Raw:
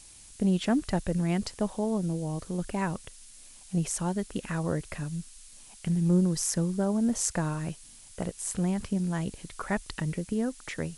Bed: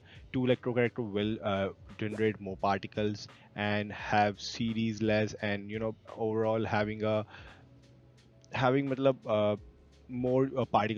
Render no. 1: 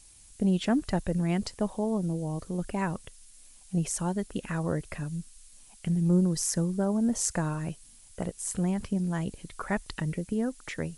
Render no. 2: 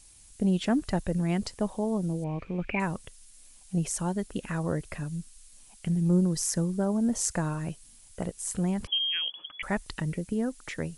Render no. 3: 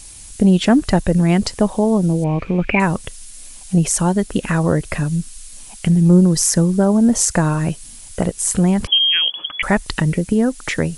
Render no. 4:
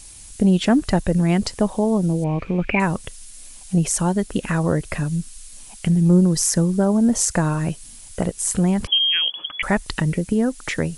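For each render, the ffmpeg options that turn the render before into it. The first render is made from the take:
-af "afftdn=nr=6:nf=-51"
-filter_complex "[0:a]asettb=1/sr,asplit=3[a][b][c];[a]atrim=end=2.244[d];[b]atrim=start=2.24:end=2.8,asetpts=PTS-STARTPTS,afade=t=in:d=0.004:c=qsin,afade=t=out:st=0.556:d=0.004:c=qsin,lowpass=f=2.4k:t=q:w=15[e];[c]atrim=start=2.796[f];[d][e]acrossfade=d=0.004:c1=hsin:c2=qsin[g];[g][f]acrossfade=d=0.004:c1=qsin:c2=hsin,asettb=1/sr,asplit=3[h][i][j];[h]atrim=end=8.874[k];[i]atrim=start=8.87:end=9.63,asetpts=PTS-STARTPTS,afade=t=in:d=0.004:c=qsin,afade=t=out:st=0.756:d=0.004:c=qsin,lowpass=f=2.9k:t=q:w=0.5098,lowpass=f=2.9k:t=q:w=0.6013,lowpass=f=2.9k:t=q:w=0.9,lowpass=f=2.9k:t=q:w=2.563,afreqshift=-3400[l];[j]atrim=start=9.626[m];[k][l]acrossfade=d=0.004:c1=hsin:c2=qsin[n];[n][m]acrossfade=d=0.004:c1=qsin:c2=hsin"
-filter_complex "[0:a]asplit=2[a][b];[b]acompressor=threshold=-35dB:ratio=6,volume=-1dB[c];[a][c]amix=inputs=2:normalize=0,alimiter=level_in=11dB:limit=-1dB:release=50:level=0:latency=1"
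-af "volume=-3.5dB"

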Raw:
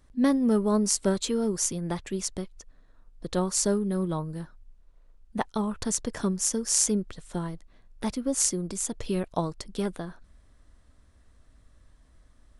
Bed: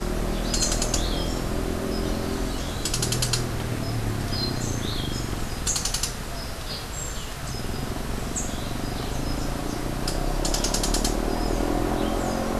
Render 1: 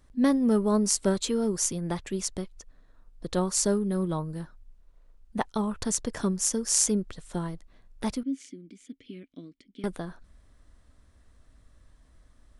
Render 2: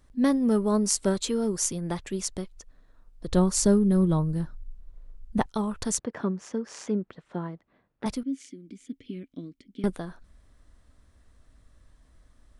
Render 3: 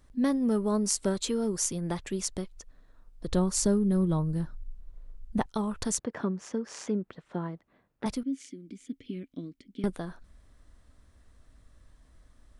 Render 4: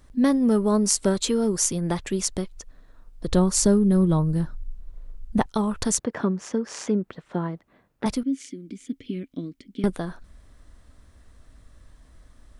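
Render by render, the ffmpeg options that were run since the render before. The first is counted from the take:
-filter_complex "[0:a]asettb=1/sr,asplit=3[a][b][c];[a]atrim=end=8.234[d];[b]atrim=start=8.23:end=9.84,asetpts=PTS-STARTPTS,afade=t=in:d=0.004:c=qsin,afade=t=out:st=1.606:d=0.004:c=qsin,asplit=3[e][f][g];[e]bandpass=f=270:t=q:w=8,volume=0dB[h];[f]bandpass=f=2.29k:t=q:w=8,volume=-6dB[i];[g]bandpass=f=3.01k:t=q:w=8,volume=-9dB[j];[h][i][j]amix=inputs=3:normalize=0[k];[c]atrim=start=9.836[l];[d][k]acrossfade=d=0.004:c1=hsin:c2=qsin[m];[m][l]acrossfade=d=0.004:c1=qsin:c2=hsin"
-filter_complex "[0:a]asettb=1/sr,asplit=3[a][b][c];[a]atrim=end=3.274[d];[b]atrim=start=3.27:end=5.46,asetpts=PTS-STARTPTS,afade=t=in:d=0.004:c=qsin,afade=t=out:st=2.186:d=0.004:c=qsin,lowshelf=f=250:g=11.5[e];[c]atrim=start=5.456[f];[d][e]acrossfade=d=0.004:c1=hsin:c2=qsin[g];[g][f]acrossfade=d=0.004:c1=qsin:c2=hsin,asettb=1/sr,asplit=3[h][i][j];[h]atrim=end=5.994[k];[i]atrim=start=5.99:end=8.06,asetpts=PTS-STARTPTS,afade=t=in:d=0.004:c=qsin,afade=t=out:st=2.066:d=0.004:c=qsin,highpass=150,lowpass=2.1k[l];[j]atrim=start=8.056[m];[k][l]acrossfade=d=0.004:c1=hsin:c2=qsin[n];[n][m]acrossfade=d=0.004:c1=qsin:c2=hsin,asettb=1/sr,asplit=3[o][p][q];[o]atrim=end=8.694[r];[p]atrim=start=8.69:end=9.9,asetpts=PTS-STARTPTS,afade=t=in:d=0.004:c=qsin,afade=t=out:st=1.206:d=0.004:c=qsin,lowshelf=f=360:g=8[s];[q]atrim=start=9.896[t];[r][s]acrossfade=d=0.004:c1=hsin:c2=qsin[u];[u][t]acrossfade=d=0.004:c1=qsin:c2=hsin"
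-af "acompressor=threshold=-29dB:ratio=1.5"
-af "volume=6.5dB"

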